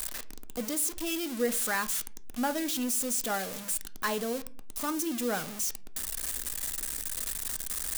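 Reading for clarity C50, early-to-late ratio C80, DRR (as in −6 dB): 19.5 dB, 24.5 dB, 10.5 dB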